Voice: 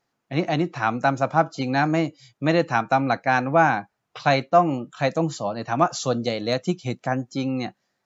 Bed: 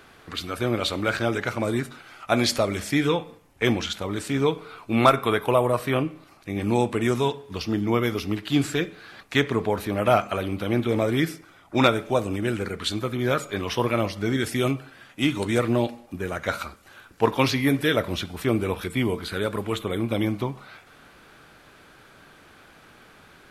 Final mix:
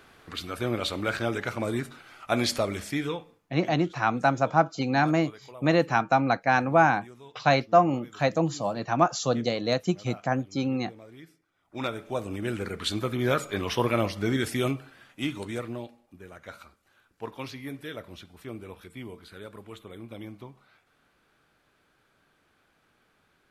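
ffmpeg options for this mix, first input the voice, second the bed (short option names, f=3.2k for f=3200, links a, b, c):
-filter_complex "[0:a]adelay=3200,volume=-2dB[a];[1:a]volume=20dB,afade=t=out:st=2.67:d=0.91:silence=0.0841395,afade=t=in:st=11.52:d=1.49:silence=0.0630957,afade=t=out:st=14.26:d=1.62:silence=0.177828[b];[a][b]amix=inputs=2:normalize=0"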